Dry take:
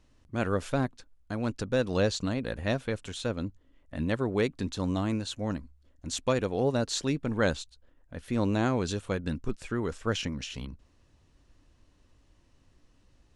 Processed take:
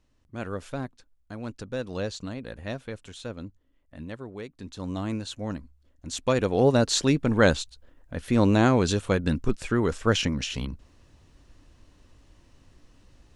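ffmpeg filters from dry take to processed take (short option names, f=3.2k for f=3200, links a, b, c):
-af "volume=14.5dB,afade=t=out:st=3.43:d=1.07:silence=0.421697,afade=t=in:st=4.5:d=0.61:silence=0.251189,afade=t=in:st=6.12:d=0.52:silence=0.421697"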